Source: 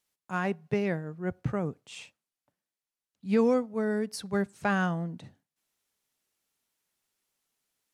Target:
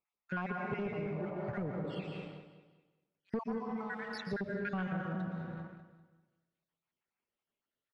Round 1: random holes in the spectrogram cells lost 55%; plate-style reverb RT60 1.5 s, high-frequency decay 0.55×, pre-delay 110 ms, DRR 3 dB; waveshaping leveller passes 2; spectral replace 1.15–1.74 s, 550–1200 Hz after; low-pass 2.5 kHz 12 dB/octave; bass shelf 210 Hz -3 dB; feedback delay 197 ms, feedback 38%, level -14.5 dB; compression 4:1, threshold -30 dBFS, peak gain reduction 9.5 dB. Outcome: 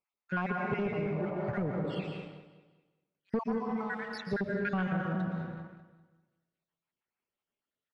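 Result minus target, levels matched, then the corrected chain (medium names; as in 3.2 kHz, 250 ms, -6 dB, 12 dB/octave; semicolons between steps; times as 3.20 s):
compression: peak gain reduction -5 dB
random holes in the spectrogram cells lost 55%; plate-style reverb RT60 1.5 s, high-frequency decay 0.55×, pre-delay 110 ms, DRR 3 dB; waveshaping leveller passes 2; spectral replace 1.15–1.74 s, 550–1200 Hz after; low-pass 2.5 kHz 12 dB/octave; bass shelf 210 Hz -3 dB; feedback delay 197 ms, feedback 38%, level -14.5 dB; compression 4:1, threshold -36.5 dBFS, peak gain reduction 14 dB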